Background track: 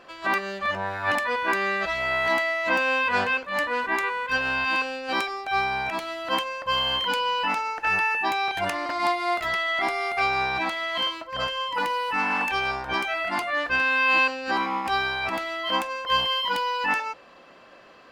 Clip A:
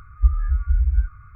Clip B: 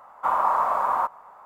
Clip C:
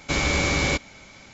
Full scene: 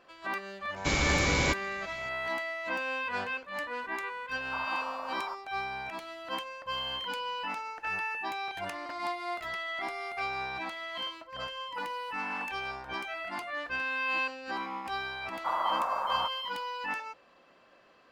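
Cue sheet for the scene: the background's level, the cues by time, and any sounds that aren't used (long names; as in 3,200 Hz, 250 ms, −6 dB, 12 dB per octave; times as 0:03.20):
background track −10.5 dB
0:00.76: mix in C −4.5 dB
0:04.28: mix in B −15.5 dB
0:15.21: mix in B −8.5 dB
not used: A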